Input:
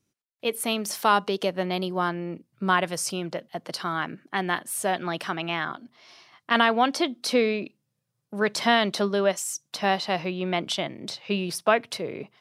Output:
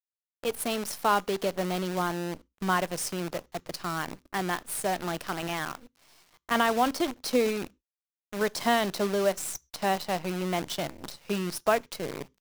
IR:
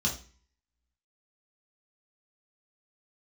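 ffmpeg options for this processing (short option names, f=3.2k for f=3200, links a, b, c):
-filter_complex "[0:a]highpass=89,equalizer=f=2.9k:t=o:w=2.3:g=-5,acrusher=bits=6:dc=4:mix=0:aa=0.000001,asplit=2[a][b];[b]asuperstop=centerf=690:order=4:qfactor=1.9[c];[1:a]atrim=start_sample=2205,atrim=end_sample=6174[d];[c][d]afir=irnorm=-1:irlink=0,volume=-28.5dB[e];[a][e]amix=inputs=2:normalize=0,volume=-2dB"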